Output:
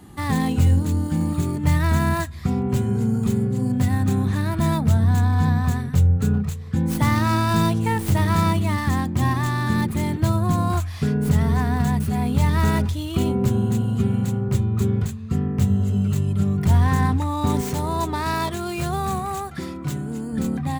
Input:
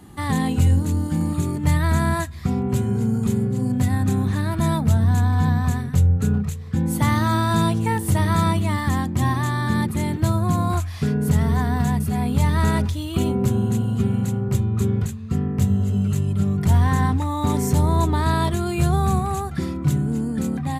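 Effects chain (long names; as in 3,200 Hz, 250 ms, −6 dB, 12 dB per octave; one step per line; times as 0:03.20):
stylus tracing distortion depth 0.12 ms
0:17.61–0:20.33: low-shelf EQ 220 Hz −11 dB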